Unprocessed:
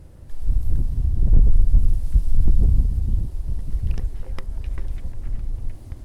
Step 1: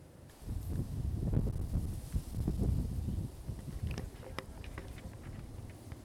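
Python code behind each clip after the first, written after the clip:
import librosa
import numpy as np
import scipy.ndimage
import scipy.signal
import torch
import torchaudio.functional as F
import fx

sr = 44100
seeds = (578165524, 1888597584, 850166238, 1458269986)

y = scipy.signal.sosfilt(scipy.signal.butter(2, 120.0, 'highpass', fs=sr, output='sos'), x)
y = fx.low_shelf(y, sr, hz=410.0, db=-3.0)
y = y * 10.0 ** (-2.0 / 20.0)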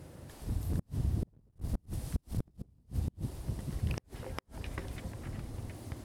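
y = fx.gate_flip(x, sr, shuts_db=-26.0, range_db=-36)
y = y * 10.0 ** (5.0 / 20.0)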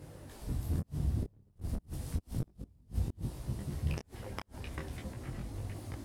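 y = fx.detune_double(x, sr, cents=12)
y = y * 10.0 ** (3.5 / 20.0)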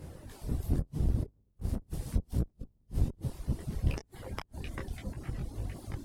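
y = fx.octave_divider(x, sr, octaves=1, level_db=1.0)
y = fx.dereverb_blind(y, sr, rt60_s=0.96)
y = y * 10.0 ** (2.0 / 20.0)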